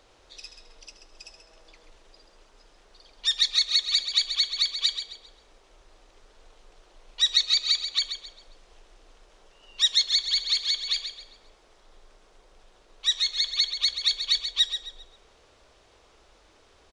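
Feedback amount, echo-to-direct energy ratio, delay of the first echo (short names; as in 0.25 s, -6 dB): 32%, -8.5 dB, 0.133 s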